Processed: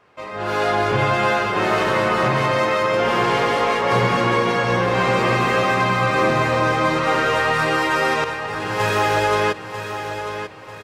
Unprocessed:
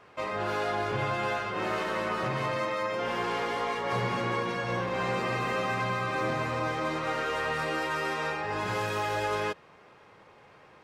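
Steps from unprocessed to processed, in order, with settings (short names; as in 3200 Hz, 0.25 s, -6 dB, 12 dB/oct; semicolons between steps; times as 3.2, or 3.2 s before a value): 8.24–8.8 expander -24 dBFS; feedback echo 0.943 s, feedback 36%, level -9.5 dB; AGC gain up to 13 dB; gain -1.5 dB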